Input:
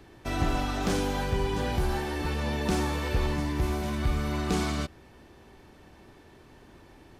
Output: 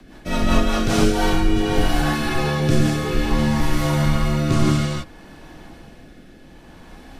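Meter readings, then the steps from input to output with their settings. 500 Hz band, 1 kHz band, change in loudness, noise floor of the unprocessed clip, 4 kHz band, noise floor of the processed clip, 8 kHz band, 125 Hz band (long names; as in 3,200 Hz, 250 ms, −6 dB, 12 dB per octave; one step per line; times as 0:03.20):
+8.0 dB, +7.5 dB, +9.0 dB, −54 dBFS, +9.5 dB, −45 dBFS, +9.0 dB, +9.5 dB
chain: reverb whose tail is shaped and stops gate 190 ms rising, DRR −1.5 dB
frequency shifter −71 Hz
rotating-speaker cabinet horn 5 Hz, later 0.6 Hz, at 0:00.74
level +8.5 dB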